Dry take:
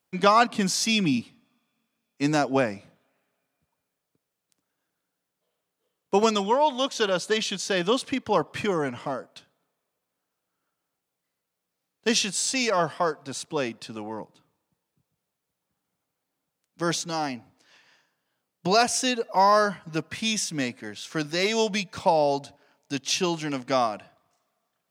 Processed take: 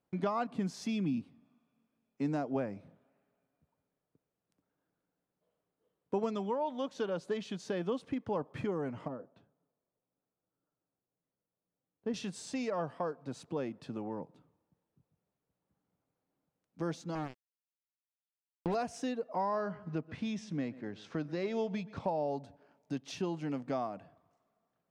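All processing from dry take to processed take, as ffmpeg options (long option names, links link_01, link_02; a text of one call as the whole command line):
ffmpeg -i in.wav -filter_complex "[0:a]asettb=1/sr,asplit=3[link_01][link_02][link_03];[link_01]atrim=end=9.084[link_04];[link_02]atrim=start=9.08:end=12.14,asetpts=PTS-STARTPTS,afade=type=in:duration=0.004:curve=qsin,afade=type=out:start_time=3.056:duration=0.004:curve=qsin,lowpass=frequency=1100:poles=1,flanger=delay=6:depth=5:regen=-47:speed=1.9:shape=triangular[link_05];[link_03]atrim=start=12.136[link_06];[link_04][link_05]acrossfade=duration=0.004:curve1=hsin:curve2=qsin[link_07];[link_07][link_06]acrossfade=duration=0.004:curve1=qsin:curve2=hsin,asettb=1/sr,asplit=3[link_08][link_09][link_10];[link_08]atrim=end=17.154[link_11];[link_09]atrim=start=17.15:end=18.75,asetpts=PTS-STARTPTS,afade=type=in:duration=0.004:curve=qsin,afade=type=out:start_time=1.596:duration=0.004:curve=qsin,lowpass=frequency=3500:width=0.5412,lowpass=frequency=3500:width=1.3066,acrusher=bits=3:mix=0:aa=0.5[link_12];[link_10]atrim=start=18.746[link_13];[link_11][link_12]acrossfade=duration=0.004:curve1=hsin:curve2=qsin[link_14];[link_14][link_13]acrossfade=duration=0.004:curve1=qsin:curve2=hsin,asettb=1/sr,asplit=3[link_15][link_16][link_17];[link_15]atrim=end=19.414[link_18];[link_16]atrim=start=19.41:end=22.04,asetpts=PTS-STARTPTS,afade=type=in:duration=0.004:curve=qsin,afade=type=out:start_time=2.626:duration=0.004:curve=qsin,lowpass=5400,asplit=2[link_19][link_20];[link_20]adelay=128,lowpass=frequency=3400:poles=1,volume=-21dB,asplit=2[link_21][link_22];[link_22]adelay=128,lowpass=frequency=3400:poles=1,volume=0.32[link_23];[link_19][link_21][link_23]amix=inputs=3:normalize=0,atrim=end_sample=115983[link_24];[link_17]atrim=start=22.036[link_25];[link_18][link_24]acrossfade=duration=0.004:curve1=hsin:curve2=qsin[link_26];[link_26][link_25]acrossfade=duration=0.004:curve1=qsin:curve2=hsin,tiltshelf=frequency=840:gain=4.5,acompressor=threshold=-36dB:ratio=2,highshelf=frequency=2800:gain=-11,volume=-2.5dB" out.wav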